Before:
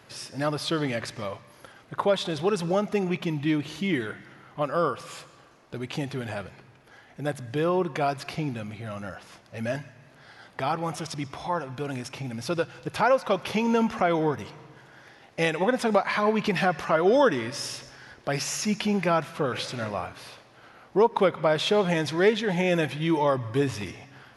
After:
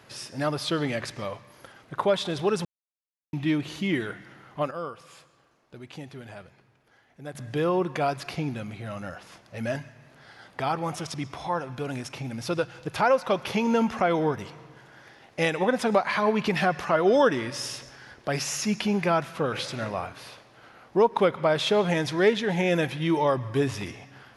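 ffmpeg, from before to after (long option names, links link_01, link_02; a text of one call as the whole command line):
ffmpeg -i in.wav -filter_complex "[0:a]asplit=5[link_01][link_02][link_03][link_04][link_05];[link_01]atrim=end=2.65,asetpts=PTS-STARTPTS,afade=type=out:start_time=2.646:duration=0.004:curve=hsin[link_06];[link_02]atrim=start=2.65:end=3.33,asetpts=PTS-STARTPTS,volume=0[link_07];[link_03]atrim=start=3.33:end=4.712,asetpts=PTS-STARTPTS,afade=type=in:duration=0.004:curve=hsin[link_08];[link_04]atrim=start=4.708:end=7.352,asetpts=PTS-STARTPTS,volume=-9.5dB[link_09];[link_05]atrim=start=7.348[link_10];[link_06][link_07][link_08]concat=n=3:v=0:a=1[link_11];[link_11][link_09]acrossfade=duration=0.004:curve1=hsin:curve2=hsin[link_12];[link_12][link_10]acrossfade=duration=0.004:curve1=hsin:curve2=hsin" out.wav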